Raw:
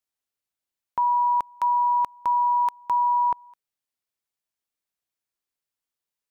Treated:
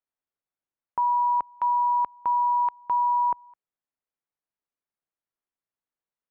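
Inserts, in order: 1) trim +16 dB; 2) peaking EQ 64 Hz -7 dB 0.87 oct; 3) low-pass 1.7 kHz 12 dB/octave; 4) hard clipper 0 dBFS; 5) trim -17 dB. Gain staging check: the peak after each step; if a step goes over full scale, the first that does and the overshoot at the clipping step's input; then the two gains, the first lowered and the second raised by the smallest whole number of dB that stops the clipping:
-2.0 dBFS, -1.5 dBFS, -2.0 dBFS, -2.0 dBFS, -19.0 dBFS; nothing clips

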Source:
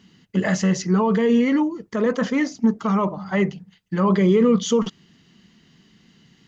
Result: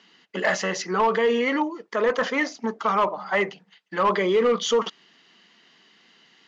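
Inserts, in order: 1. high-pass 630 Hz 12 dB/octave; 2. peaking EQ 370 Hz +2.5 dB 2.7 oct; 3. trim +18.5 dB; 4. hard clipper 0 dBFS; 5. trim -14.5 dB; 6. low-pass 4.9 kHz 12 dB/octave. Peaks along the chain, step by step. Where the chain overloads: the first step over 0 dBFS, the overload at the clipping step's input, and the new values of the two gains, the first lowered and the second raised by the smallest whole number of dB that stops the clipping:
-13.5 dBFS, -12.5 dBFS, +6.0 dBFS, 0.0 dBFS, -14.5 dBFS, -14.0 dBFS; step 3, 6.0 dB; step 3 +12.5 dB, step 5 -8.5 dB

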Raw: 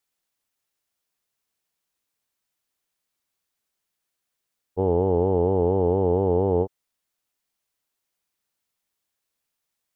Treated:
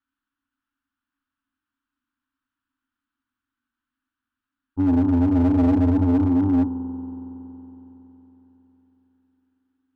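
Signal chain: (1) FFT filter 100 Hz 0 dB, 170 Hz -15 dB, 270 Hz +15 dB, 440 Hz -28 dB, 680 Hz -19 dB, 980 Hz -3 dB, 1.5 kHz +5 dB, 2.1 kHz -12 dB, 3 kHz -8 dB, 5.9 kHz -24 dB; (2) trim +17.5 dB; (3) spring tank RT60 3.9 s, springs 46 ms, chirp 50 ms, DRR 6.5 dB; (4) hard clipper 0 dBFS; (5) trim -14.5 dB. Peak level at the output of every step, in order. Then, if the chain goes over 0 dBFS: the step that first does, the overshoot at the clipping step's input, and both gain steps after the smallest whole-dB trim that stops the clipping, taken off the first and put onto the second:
-14.0 dBFS, +3.5 dBFS, +8.5 dBFS, 0.0 dBFS, -14.5 dBFS; step 2, 8.5 dB; step 2 +8.5 dB, step 5 -5.5 dB

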